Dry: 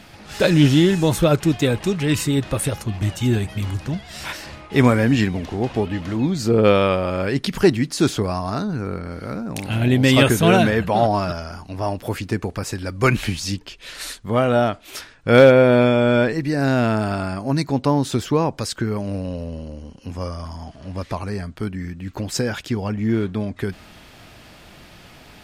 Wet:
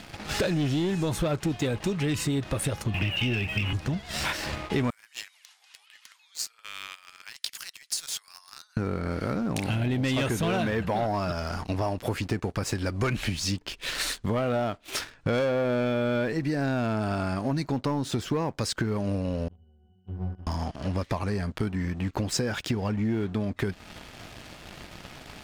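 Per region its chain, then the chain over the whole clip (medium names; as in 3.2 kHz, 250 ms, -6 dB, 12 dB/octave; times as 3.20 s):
2.94–3.73 s: resonant low-pass 2.7 kHz, resonance Q 9.3 + three bands compressed up and down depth 40%
4.90–8.77 s: compression 2:1, threshold -26 dBFS + high-pass 1.1 kHz 24 dB/octave + differentiator
19.48–20.47 s: peaking EQ 390 Hz -2.5 dB 1.1 oct + pitch-class resonator F#, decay 0.58 s
whole clip: treble shelf 11 kHz -8 dB; waveshaping leveller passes 2; compression 6:1, threshold -26 dBFS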